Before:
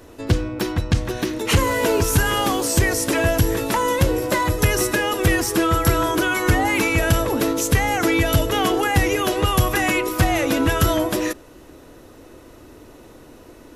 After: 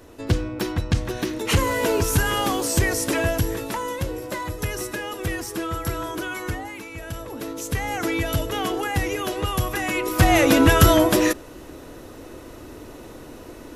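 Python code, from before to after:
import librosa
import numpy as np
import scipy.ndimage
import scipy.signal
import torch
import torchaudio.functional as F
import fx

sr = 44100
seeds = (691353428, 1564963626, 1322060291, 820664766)

y = fx.gain(x, sr, db=fx.line((3.13, -2.5), (4.0, -9.5), (6.42, -9.5), (6.84, -18.5), (7.95, -6.0), (9.88, -6.0), (10.35, 4.0)))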